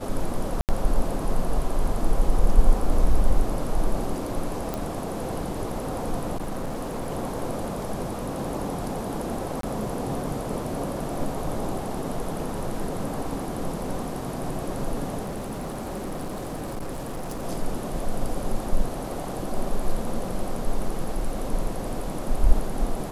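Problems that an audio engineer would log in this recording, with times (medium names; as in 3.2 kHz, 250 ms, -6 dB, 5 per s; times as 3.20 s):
0.61–0.69 s: dropout 78 ms
4.74 s: pop
6.36–7.11 s: clipped -26 dBFS
9.61–9.63 s: dropout 23 ms
15.23–17.44 s: clipped -28 dBFS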